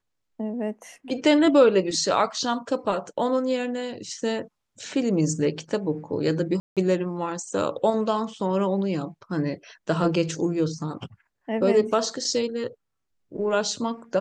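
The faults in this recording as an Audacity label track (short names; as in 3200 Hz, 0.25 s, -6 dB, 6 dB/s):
6.600000	6.770000	gap 0.167 s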